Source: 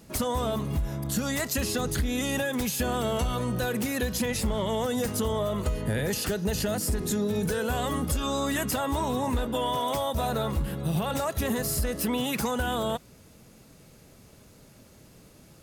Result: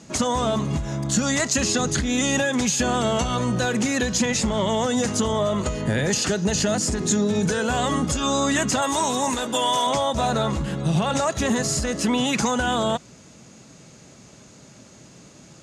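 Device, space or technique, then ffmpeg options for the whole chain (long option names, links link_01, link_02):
car door speaker: -filter_complex "[0:a]highpass=85,equalizer=frequency=88:width_type=q:width=4:gain=-8,equalizer=frequency=460:width_type=q:width=4:gain=-4,equalizer=frequency=6700:width_type=q:width=4:gain=8,lowpass=frequency=7800:width=0.5412,lowpass=frequency=7800:width=1.3066,asettb=1/sr,asplit=3[link_01][link_02][link_03];[link_01]atrim=end=8.824[link_04];[link_02]atrim=start=8.82:end=9.87,asetpts=PTS-STARTPTS,afade=type=in:duration=0.004:curve=qsin,afade=type=out:start_time=1.046:duration=0.004:curve=qsin,aemphasis=mode=production:type=bsi[link_05];[link_03]atrim=start=9.866[link_06];[link_04][link_05]acrossfade=duration=0.004:curve1=hsin:curve2=qsin[link_07];[link_07][link_06]acrossfade=duration=0.004:curve1=qsin:curve2=hsin,volume=7dB"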